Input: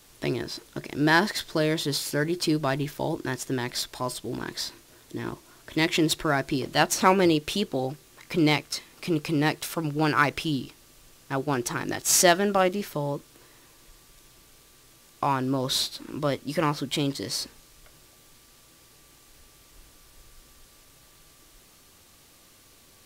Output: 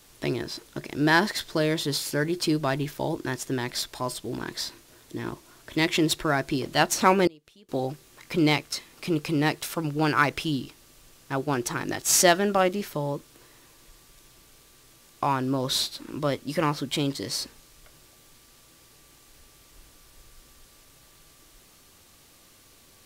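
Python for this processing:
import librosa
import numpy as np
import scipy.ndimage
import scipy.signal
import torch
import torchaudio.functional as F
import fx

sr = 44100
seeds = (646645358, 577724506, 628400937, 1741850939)

y = fx.gate_flip(x, sr, shuts_db=-25.0, range_db=-28, at=(7.27, 7.69))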